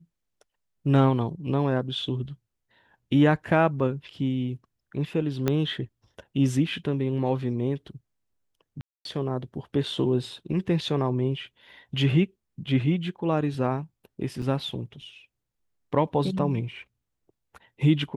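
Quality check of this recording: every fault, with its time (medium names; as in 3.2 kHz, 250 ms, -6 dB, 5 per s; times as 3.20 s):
5.48 s: pop -10 dBFS
8.81–9.05 s: dropout 242 ms
14.42 s: dropout 3.6 ms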